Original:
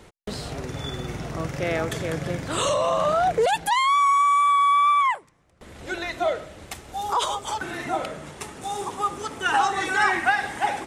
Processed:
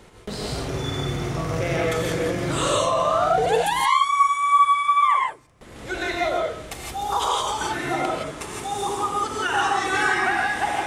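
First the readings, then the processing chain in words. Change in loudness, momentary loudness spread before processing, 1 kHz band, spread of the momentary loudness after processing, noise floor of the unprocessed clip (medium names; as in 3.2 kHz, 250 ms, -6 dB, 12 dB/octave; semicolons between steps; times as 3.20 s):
+1.0 dB, 16 LU, +0.5 dB, 12 LU, -53 dBFS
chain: compression 2.5:1, threshold -23 dBFS, peak gain reduction 6 dB; gated-style reverb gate 190 ms rising, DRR -2.5 dB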